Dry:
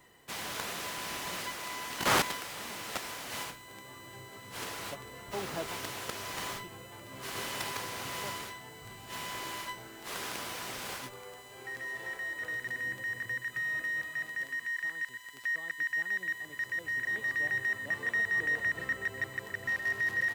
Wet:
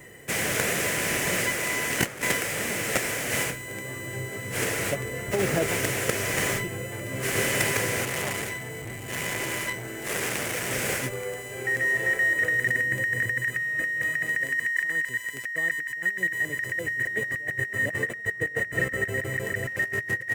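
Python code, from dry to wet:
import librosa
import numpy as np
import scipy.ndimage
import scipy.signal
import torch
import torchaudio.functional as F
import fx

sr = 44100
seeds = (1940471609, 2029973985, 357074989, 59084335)

y = fx.graphic_eq(x, sr, hz=(125, 500, 1000, 2000, 4000, 8000), db=(7, 7, -11, 8, -10, 5))
y = fx.over_compress(y, sr, threshold_db=-33.0, ratio=-0.5)
y = fx.transformer_sat(y, sr, knee_hz=1800.0, at=(8.05, 10.71))
y = F.gain(torch.from_numpy(y), 8.5).numpy()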